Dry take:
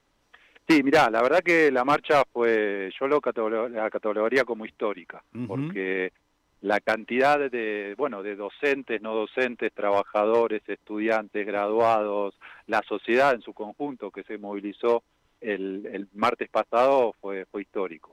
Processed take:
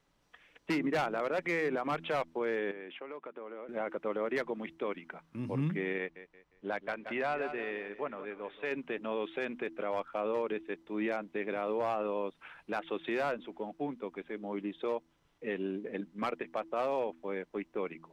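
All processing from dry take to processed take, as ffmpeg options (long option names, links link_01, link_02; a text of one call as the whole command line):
ffmpeg -i in.wav -filter_complex "[0:a]asettb=1/sr,asplit=3[link_01][link_02][link_03];[link_01]atrim=end=2.714[link_04];[link_02]atrim=start=2.71:end=3.69,asetpts=PTS-STARTPTS,afade=type=in:duration=0.004:curve=qsin,afade=type=out:start_time=0.976:duration=0.004:curve=qsin,agate=range=-33dB:threshold=-40dB:ratio=3:release=100:detection=peak,acompressor=threshold=-35dB:ratio=8:attack=3.2:release=140:knee=1:detection=peak,highpass=230,lowpass=3600[link_05];[link_03]atrim=start=3.686[link_06];[link_04][link_05]acrossfade=duration=0.004:curve1=hsin:curve2=qsin[link_07];[link_07][link_06]acrossfade=duration=0.004:curve1=qsin:curve2=hsin,asettb=1/sr,asplit=3[link_08][link_09][link_10];[link_08]atrim=end=5.984[link_11];[link_09]atrim=start=5.98:end=8.71,asetpts=PTS-STARTPTS,afade=type=in:duration=0.004:curve=qsin,afade=type=out:start_time=2.726:duration=0.004:curve=qsin,lowpass=frequency=2600:poles=1,equalizer=frequency=250:width=0.53:gain=-6.5,aecho=1:1:177|354|531:0.2|0.0678|0.0231,atrim=end_sample=120393[link_12];[link_10]atrim=start=8.706[link_13];[link_11][link_12]acrossfade=duration=0.004:curve1=hsin:curve2=qsin[link_14];[link_14][link_13]acrossfade=duration=0.004:curve1=qsin:curve2=hsin,bandreject=frequency=82:width_type=h:width=4,bandreject=frequency=164:width_type=h:width=4,bandreject=frequency=246:width_type=h:width=4,bandreject=frequency=328:width_type=h:width=4,alimiter=limit=-20dB:level=0:latency=1:release=61,equalizer=frequency=160:width_type=o:width=0.35:gain=10,volume=-5dB" out.wav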